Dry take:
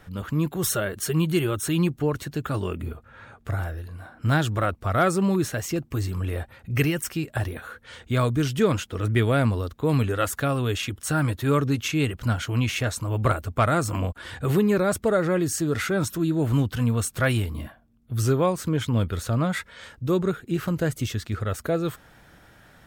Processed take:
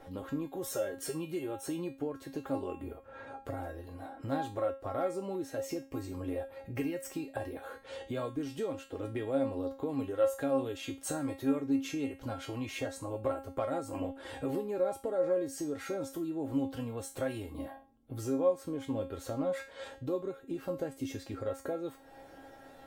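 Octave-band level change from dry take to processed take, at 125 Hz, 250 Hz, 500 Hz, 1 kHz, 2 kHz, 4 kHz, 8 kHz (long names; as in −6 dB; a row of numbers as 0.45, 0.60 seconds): −20.5, −10.0, −7.0, −12.0, −16.5, −15.0, −13.5 decibels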